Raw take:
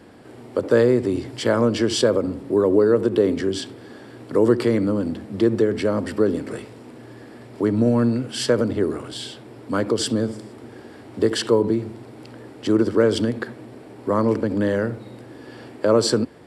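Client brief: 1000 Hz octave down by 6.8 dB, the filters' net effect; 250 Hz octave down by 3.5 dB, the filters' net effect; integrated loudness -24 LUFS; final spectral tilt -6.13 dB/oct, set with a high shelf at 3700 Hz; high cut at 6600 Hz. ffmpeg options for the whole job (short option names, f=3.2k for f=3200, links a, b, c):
-af "lowpass=6.6k,equalizer=f=250:t=o:g=-4,equalizer=f=1k:t=o:g=-8,highshelf=f=3.7k:g=-6"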